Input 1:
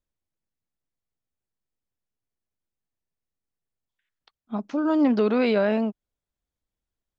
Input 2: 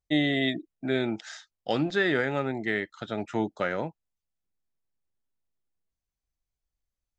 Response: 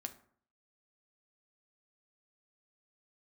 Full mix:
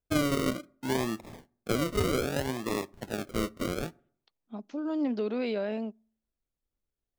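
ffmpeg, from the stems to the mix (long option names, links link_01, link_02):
-filter_complex "[0:a]highpass=220,equalizer=frequency=1200:width=0.85:gain=-7.5,volume=-7.5dB,asplit=2[link_01][link_02];[link_02]volume=-21dB[link_03];[1:a]acrusher=samples=41:mix=1:aa=0.000001:lfo=1:lforange=24.6:lforate=0.64,volume=-4.5dB,asplit=2[link_04][link_05];[link_05]volume=-8.5dB[link_06];[2:a]atrim=start_sample=2205[link_07];[link_03][link_06]amix=inputs=2:normalize=0[link_08];[link_08][link_07]afir=irnorm=-1:irlink=0[link_09];[link_01][link_04][link_09]amix=inputs=3:normalize=0"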